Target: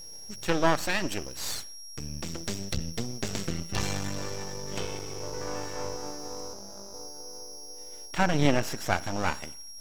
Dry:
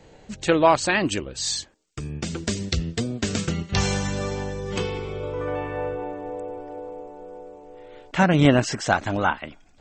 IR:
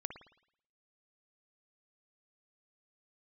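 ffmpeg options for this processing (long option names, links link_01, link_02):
-filter_complex "[0:a]aeval=exprs='val(0)+0.02*sin(2*PI*5600*n/s)':channel_layout=same,asettb=1/sr,asplit=3[link_01][link_02][link_03];[link_01]atrim=end=6.534[link_04];[link_02]atrim=start=6.53:end=6.94,asetpts=PTS-STARTPTS,afade=type=in:duration=0.004:curve=qsin,afade=type=out:start_time=0.406:duration=0.004:curve=qsin,aeval=exprs='val(0)*sin(2*PI*100*n/s)':channel_layout=same[link_05];[link_03]atrim=start=6.936[link_06];[link_04][link_05]acrossfade=duration=0.004:curve1=hsin:curve2=qsin[link_07];[link_07][link_06]acrossfade=duration=0.004:curve1=qsin:curve2=hsin,aeval=exprs='max(val(0),0)':channel_layout=same,asplit=2[link_08][link_09];[1:a]atrim=start_sample=2205[link_10];[link_09][link_10]afir=irnorm=-1:irlink=0,volume=-9dB[link_11];[link_08][link_11]amix=inputs=2:normalize=0,volume=-5.5dB"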